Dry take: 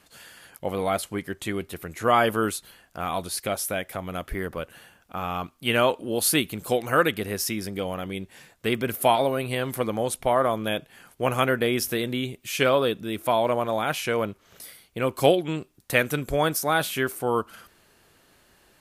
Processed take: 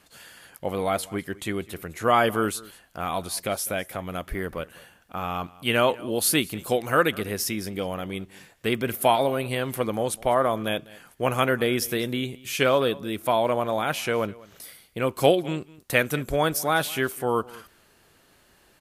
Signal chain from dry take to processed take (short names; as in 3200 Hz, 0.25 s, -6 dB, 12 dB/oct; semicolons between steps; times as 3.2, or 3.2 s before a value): echo 0.202 s -21.5 dB